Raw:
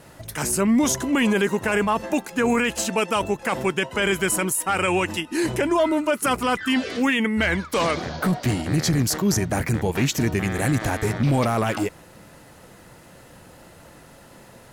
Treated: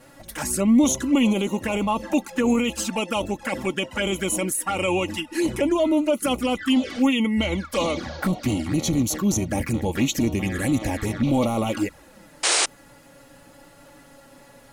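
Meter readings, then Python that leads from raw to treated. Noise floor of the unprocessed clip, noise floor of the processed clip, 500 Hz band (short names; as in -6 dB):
-48 dBFS, -51 dBFS, -1.5 dB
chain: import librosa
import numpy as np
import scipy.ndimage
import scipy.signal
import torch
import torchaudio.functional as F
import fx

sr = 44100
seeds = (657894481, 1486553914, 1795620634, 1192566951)

y = fx.env_flanger(x, sr, rest_ms=8.6, full_db=-18.5)
y = y + 0.5 * np.pad(y, (int(3.6 * sr / 1000.0), 0))[:len(y)]
y = fx.spec_paint(y, sr, seeds[0], shape='noise', start_s=12.43, length_s=0.23, low_hz=290.0, high_hz=9700.0, level_db=-20.0)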